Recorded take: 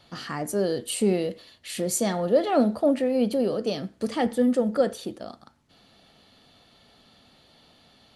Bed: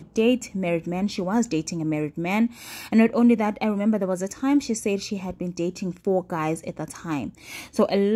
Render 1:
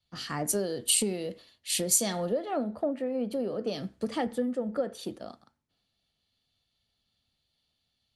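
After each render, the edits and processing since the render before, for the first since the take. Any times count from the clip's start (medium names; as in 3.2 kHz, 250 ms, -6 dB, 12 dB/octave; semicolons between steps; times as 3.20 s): compression 20:1, threshold -27 dBFS, peak gain reduction 13.5 dB; three bands expanded up and down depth 100%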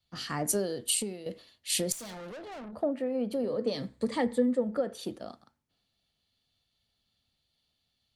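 0.60–1.26 s: fade out, to -11 dB; 1.92–2.73 s: valve stage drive 41 dB, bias 0.6; 3.43–4.64 s: rippled EQ curve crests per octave 1, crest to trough 8 dB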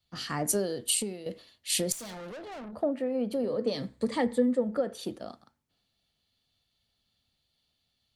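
trim +1 dB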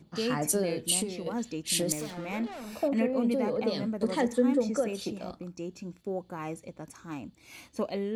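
add bed -11.5 dB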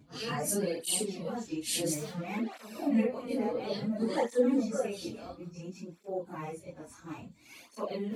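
phase randomisation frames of 100 ms; cancelling through-zero flanger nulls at 0.58 Hz, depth 5.8 ms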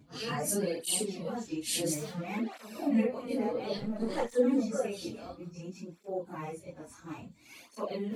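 3.78–4.34 s: partial rectifier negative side -7 dB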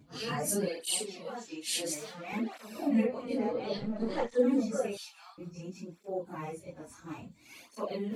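0.68–2.33 s: frequency weighting A; 3.06–4.38 s: low-pass 9 kHz -> 5 kHz; 4.97–5.38 s: steep high-pass 810 Hz 72 dB/octave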